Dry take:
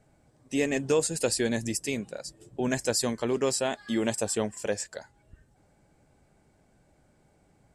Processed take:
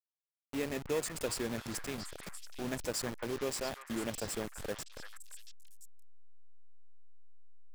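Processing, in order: level-crossing sampler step -27.5 dBFS; delay with a stepping band-pass 0.341 s, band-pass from 1500 Hz, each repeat 1.4 oct, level -2.5 dB; gain -9 dB

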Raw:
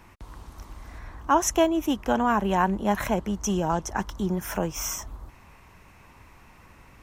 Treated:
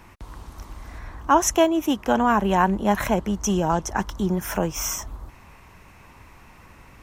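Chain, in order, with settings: 1.55–2.14 HPF 190 Hz -> 82 Hz 6 dB/oct; gain +3.5 dB

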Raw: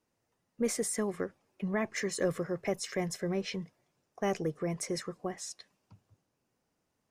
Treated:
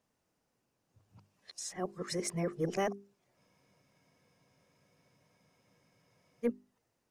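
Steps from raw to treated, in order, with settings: whole clip reversed; notches 50/100/150/200/250/300/350/400 Hz; spectral freeze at 3.4, 3.04 s

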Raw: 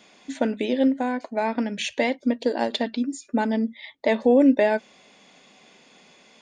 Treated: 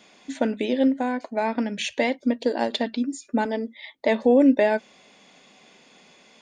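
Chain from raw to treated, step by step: 3.45–3.96 resonant low shelf 230 Hz -13.5 dB, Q 1.5

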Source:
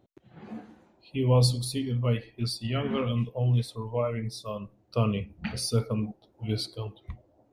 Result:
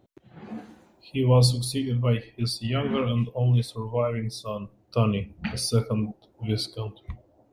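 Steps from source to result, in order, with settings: 0.57–1.2 high shelf 3600 Hz -> 5900 Hz +9 dB; gain +3 dB

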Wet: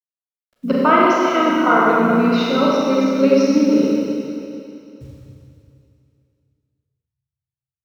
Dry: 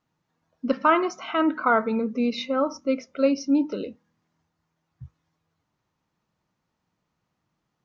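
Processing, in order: requantised 10-bit, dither none; Schroeder reverb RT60 2.7 s, combs from 30 ms, DRR -5.5 dB; harmoniser -5 st -9 dB; gain +2 dB

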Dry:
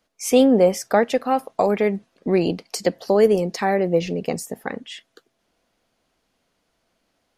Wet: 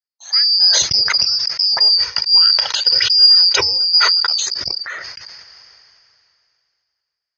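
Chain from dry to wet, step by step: four-band scrambler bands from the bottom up 2341; 1.78–4.28 comb 2.1 ms, depth 56%; AGC gain up to 12.5 dB; rippled Chebyshev low-pass 6600 Hz, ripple 9 dB; gate with hold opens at -44 dBFS; HPF 49 Hz; bell 250 Hz -11.5 dB 0.86 oct; sustainer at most 24 dB/s; gain -1 dB

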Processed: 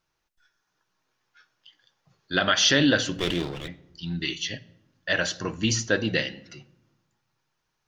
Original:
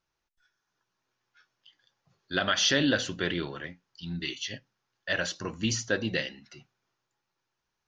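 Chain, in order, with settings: 3.14–3.68 minimum comb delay 0.32 ms; reverb RT60 0.95 s, pre-delay 6 ms, DRR 14.5 dB; gain +4.5 dB

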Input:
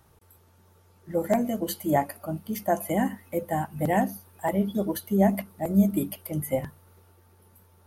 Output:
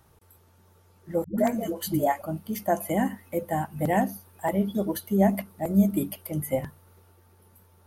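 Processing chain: 1.24–2.22 dispersion highs, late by 0.14 s, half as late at 360 Hz

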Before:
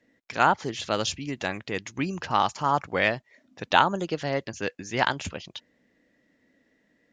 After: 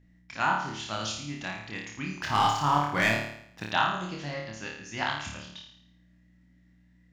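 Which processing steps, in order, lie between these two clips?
bell 460 Hz -14 dB 0.66 oct; 2.21–3.65 sample leveller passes 2; hum 60 Hz, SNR 25 dB; on a send: flutter echo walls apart 4.7 m, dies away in 0.68 s; on the sum: gain -7 dB

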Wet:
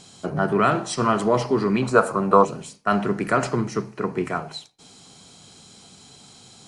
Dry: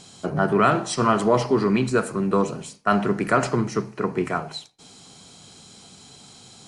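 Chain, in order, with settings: 1.82–2.45 band shelf 830 Hz +11 dB; gain -1 dB

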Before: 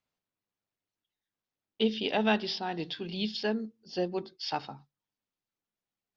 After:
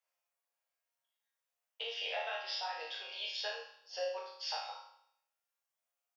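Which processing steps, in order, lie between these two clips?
Chebyshev high-pass 490 Hz, order 6; bell 4000 Hz -6.5 dB 0.53 oct; compressor 6:1, threshold -36 dBFS, peak gain reduction 11.5 dB; high shelf 5400 Hz +4.5 dB; resonator bank D#2 sus4, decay 0.71 s; early reflections 35 ms -10 dB, 57 ms -10 dB; gain +16.5 dB

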